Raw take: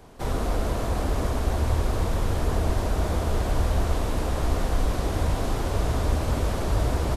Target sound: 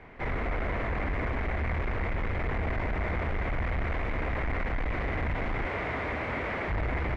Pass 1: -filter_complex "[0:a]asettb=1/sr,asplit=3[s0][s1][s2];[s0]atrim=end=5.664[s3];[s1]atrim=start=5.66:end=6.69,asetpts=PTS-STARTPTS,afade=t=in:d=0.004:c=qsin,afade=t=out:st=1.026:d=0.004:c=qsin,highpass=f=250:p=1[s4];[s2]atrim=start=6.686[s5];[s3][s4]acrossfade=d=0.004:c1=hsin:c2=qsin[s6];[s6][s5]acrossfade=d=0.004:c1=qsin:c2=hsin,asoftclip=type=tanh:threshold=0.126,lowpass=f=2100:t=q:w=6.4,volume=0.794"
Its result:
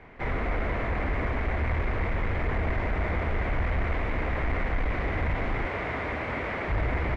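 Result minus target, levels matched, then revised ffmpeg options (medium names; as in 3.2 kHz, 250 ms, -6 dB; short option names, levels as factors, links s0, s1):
saturation: distortion -6 dB
-filter_complex "[0:a]asettb=1/sr,asplit=3[s0][s1][s2];[s0]atrim=end=5.664[s3];[s1]atrim=start=5.66:end=6.69,asetpts=PTS-STARTPTS,afade=t=in:d=0.004:c=qsin,afade=t=out:st=1.026:d=0.004:c=qsin,highpass=f=250:p=1[s4];[s2]atrim=start=6.686[s5];[s3][s4]acrossfade=d=0.004:c1=hsin:c2=qsin[s6];[s6][s5]acrossfade=d=0.004:c1=qsin:c2=hsin,asoftclip=type=tanh:threshold=0.0631,lowpass=f=2100:t=q:w=6.4,volume=0.794"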